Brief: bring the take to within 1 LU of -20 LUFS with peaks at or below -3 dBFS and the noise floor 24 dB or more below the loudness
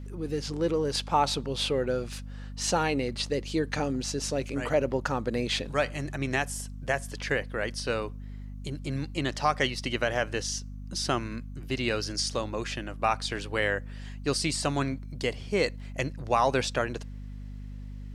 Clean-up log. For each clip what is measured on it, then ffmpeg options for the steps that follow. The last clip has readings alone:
hum 50 Hz; harmonics up to 250 Hz; hum level -37 dBFS; loudness -29.5 LUFS; peak -12.0 dBFS; loudness target -20.0 LUFS
-> -af "bandreject=f=50:t=h:w=4,bandreject=f=100:t=h:w=4,bandreject=f=150:t=h:w=4,bandreject=f=200:t=h:w=4,bandreject=f=250:t=h:w=4"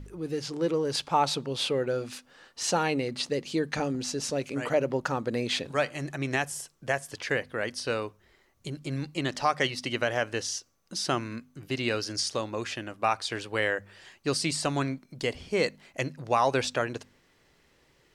hum none; loudness -30.0 LUFS; peak -12.0 dBFS; loudness target -20.0 LUFS
-> -af "volume=10dB,alimiter=limit=-3dB:level=0:latency=1"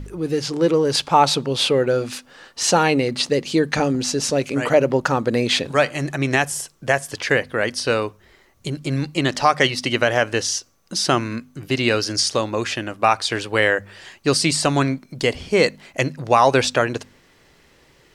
loudness -20.0 LUFS; peak -3.0 dBFS; noise floor -55 dBFS

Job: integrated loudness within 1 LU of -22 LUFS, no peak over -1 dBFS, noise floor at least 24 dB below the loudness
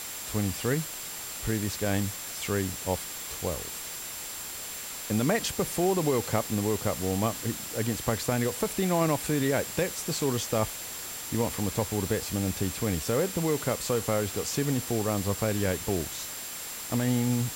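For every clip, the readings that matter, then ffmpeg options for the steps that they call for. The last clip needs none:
steady tone 7400 Hz; tone level -42 dBFS; noise floor -38 dBFS; noise floor target -53 dBFS; loudness -29.0 LUFS; peak -12.0 dBFS; loudness target -22.0 LUFS
-> -af "bandreject=f=7.4k:w=30"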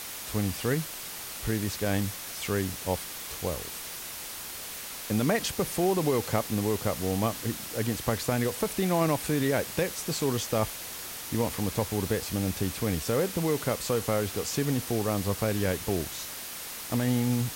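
steady tone none; noise floor -39 dBFS; noise floor target -54 dBFS
-> -af "afftdn=nr=15:nf=-39"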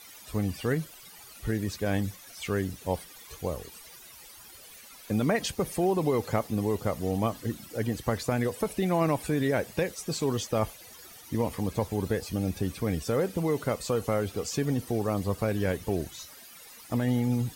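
noise floor -50 dBFS; noise floor target -54 dBFS
-> -af "afftdn=nr=6:nf=-50"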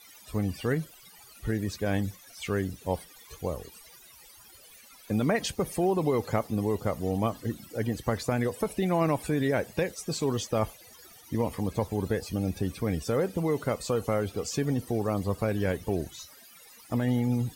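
noise floor -53 dBFS; noise floor target -54 dBFS
-> -af "afftdn=nr=6:nf=-53"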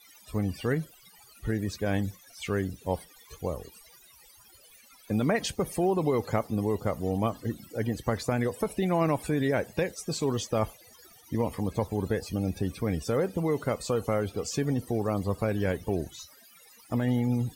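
noise floor -56 dBFS; loudness -30.0 LUFS; peak -12.5 dBFS; loudness target -22.0 LUFS
-> -af "volume=8dB"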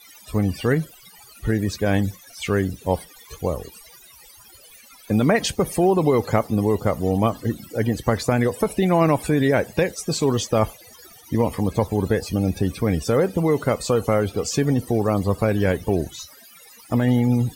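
loudness -22.0 LUFS; peak -4.5 dBFS; noise floor -48 dBFS

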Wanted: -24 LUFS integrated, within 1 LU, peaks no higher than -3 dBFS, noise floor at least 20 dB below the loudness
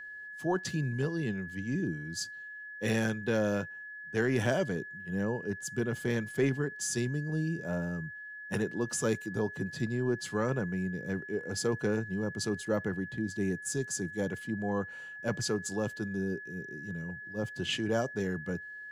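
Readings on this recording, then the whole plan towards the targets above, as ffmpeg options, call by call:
steady tone 1700 Hz; tone level -42 dBFS; loudness -33.5 LUFS; peak -16.0 dBFS; loudness target -24.0 LUFS
-> -af "bandreject=f=1.7k:w=30"
-af "volume=9.5dB"

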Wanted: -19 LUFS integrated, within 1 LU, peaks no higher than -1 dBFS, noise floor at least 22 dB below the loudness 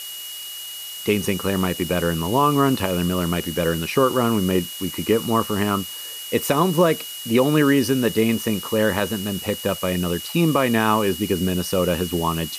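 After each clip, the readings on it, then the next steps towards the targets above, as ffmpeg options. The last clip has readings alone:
steady tone 2900 Hz; tone level -34 dBFS; noise floor -34 dBFS; noise floor target -44 dBFS; loudness -21.5 LUFS; peak -5.0 dBFS; loudness target -19.0 LUFS
-> -af "bandreject=f=2.9k:w=30"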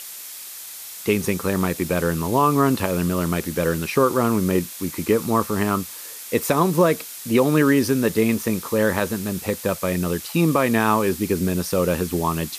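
steady tone none; noise floor -37 dBFS; noise floor target -43 dBFS
-> -af "afftdn=nr=6:nf=-37"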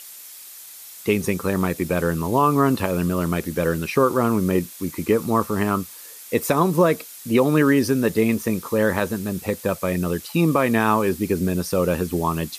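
noise floor -41 dBFS; noise floor target -44 dBFS
-> -af "afftdn=nr=6:nf=-41"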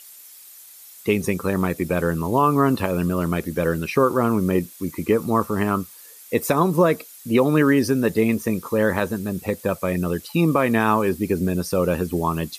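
noise floor -45 dBFS; loudness -21.5 LUFS; peak -6.0 dBFS; loudness target -19.0 LUFS
-> -af "volume=2.5dB"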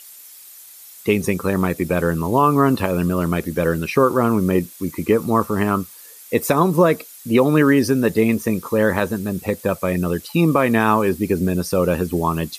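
loudness -19.0 LUFS; peak -3.5 dBFS; noise floor -42 dBFS

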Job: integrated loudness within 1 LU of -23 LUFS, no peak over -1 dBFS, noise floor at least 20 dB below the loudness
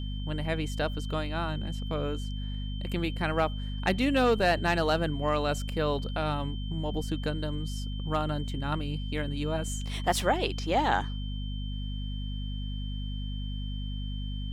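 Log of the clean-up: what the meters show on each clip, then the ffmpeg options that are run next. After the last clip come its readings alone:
hum 50 Hz; harmonics up to 250 Hz; hum level -32 dBFS; steady tone 3100 Hz; tone level -45 dBFS; loudness -31.0 LUFS; peak -11.0 dBFS; loudness target -23.0 LUFS
-> -af "bandreject=f=50:t=h:w=4,bandreject=f=100:t=h:w=4,bandreject=f=150:t=h:w=4,bandreject=f=200:t=h:w=4,bandreject=f=250:t=h:w=4"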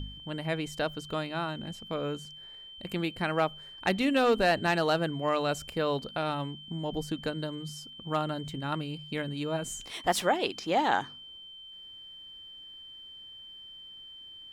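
hum none; steady tone 3100 Hz; tone level -45 dBFS
-> -af "bandreject=f=3.1k:w=30"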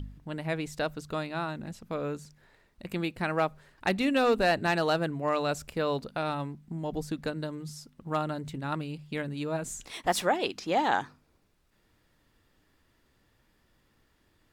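steady tone none; loudness -31.0 LUFS; peak -11.0 dBFS; loudness target -23.0 LUFS
-> -af "volume=8dB"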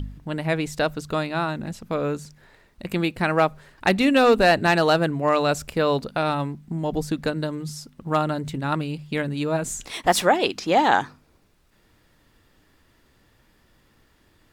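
loudness -23.0 LUFS; peak -3.0 dBFS; noise floor -61 dBFS

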